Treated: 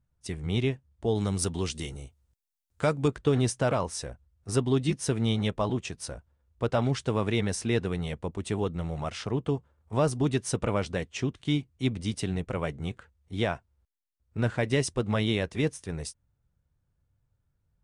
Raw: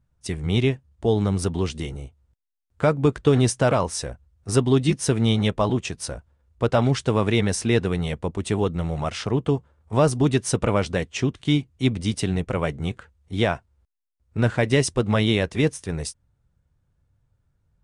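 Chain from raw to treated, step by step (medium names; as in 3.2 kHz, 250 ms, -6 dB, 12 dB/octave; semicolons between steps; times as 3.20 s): 1.15–3.08 s: treble shelf 3.4 kHz +11 dB; trim -6.5 dB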